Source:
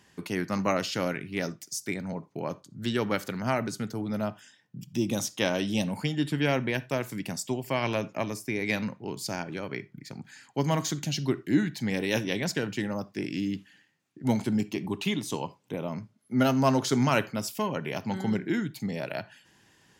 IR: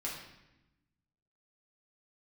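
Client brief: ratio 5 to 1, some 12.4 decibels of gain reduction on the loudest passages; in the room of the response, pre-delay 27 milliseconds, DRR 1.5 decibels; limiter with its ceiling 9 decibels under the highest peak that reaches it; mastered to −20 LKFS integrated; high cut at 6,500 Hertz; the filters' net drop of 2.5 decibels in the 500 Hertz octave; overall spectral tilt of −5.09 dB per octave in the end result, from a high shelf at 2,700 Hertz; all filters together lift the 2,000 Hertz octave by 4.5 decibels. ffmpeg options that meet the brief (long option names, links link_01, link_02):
-filter_complex "[0:a]lowpass=6500,equalizer=frequency=500:width_type=o:gain=-3.5,equalizer=frequency=2000:width_type=o:gain=7,highshelf=frequency=2700:gain=-3,acompressor=threshold=-33dB:ratio=5,alimiter=level_in=3dB:limit=-24dB:level=0:latency=1,volume=-3dB,asplit=2[link_01][link_02];[1:a]atrim=start_sample=2205,adelay=27[link_03];[link_02][link_03]afir=irnorm=-1:irlink=0,volume=-3.5dB[link_04];[link_01][link_04]amix=inputs=2:normalize=0,volume=17dB"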